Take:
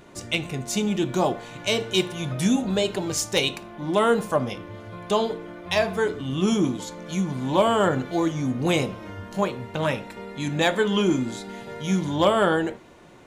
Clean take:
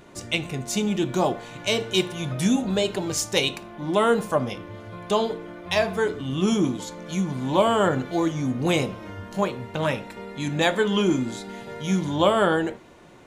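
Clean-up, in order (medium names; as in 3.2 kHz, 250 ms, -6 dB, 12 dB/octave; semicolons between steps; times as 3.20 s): clip repair -10.5 dBFS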